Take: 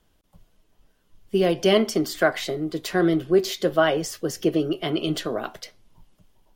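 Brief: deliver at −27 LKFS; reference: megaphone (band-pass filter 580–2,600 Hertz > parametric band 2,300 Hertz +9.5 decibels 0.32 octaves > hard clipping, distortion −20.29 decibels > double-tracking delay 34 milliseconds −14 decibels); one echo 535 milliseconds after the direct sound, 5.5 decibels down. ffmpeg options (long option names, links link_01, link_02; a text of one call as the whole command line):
ffmpeg -i in.wav -filter_complex "[0:a]highpass=580,lowpass=2600,equalizer=frequency=2300:width_type=o:width=0.32:gain=9.5,aecho=1:1:535:0.531,asoftclip=type=hard:threshold=-14dB,asplit=2[link_01][link_02];[link_02]adelay=34,volume=-14dB[link_03];[link_01][link_03]amix=inputs=2:normalize=0,volume=0.5dB" out.wav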